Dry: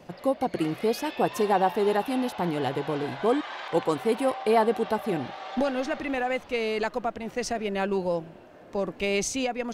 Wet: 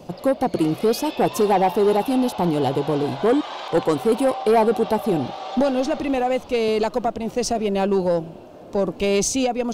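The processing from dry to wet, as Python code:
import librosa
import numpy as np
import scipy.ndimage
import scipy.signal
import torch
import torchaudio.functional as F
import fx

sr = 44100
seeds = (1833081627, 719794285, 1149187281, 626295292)

y = fx.peak_eq(x, sr, hz=1800.0, db=-13.0, octaves=0.91)
y = 10.0 ** (-19.5 / 20.0) * np.tanh(y / 10.0 ** (-19.5 / 20.0))
y = fx.band_squash(y, sr, depth_pct=40, at=(6.68, 7.08))
y = y * 10.0 ** (9.0 / 20.0)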